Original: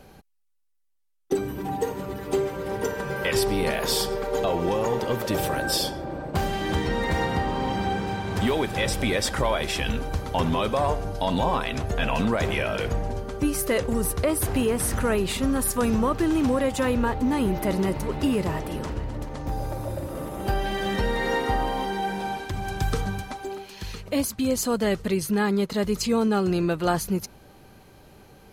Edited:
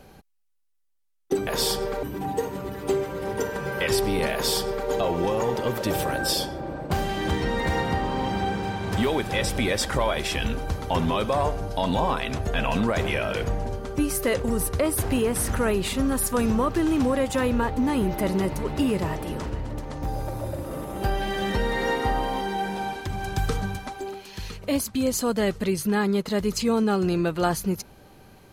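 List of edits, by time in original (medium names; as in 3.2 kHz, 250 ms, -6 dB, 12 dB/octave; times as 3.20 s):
3.77–4.33 s: copy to 1.47 s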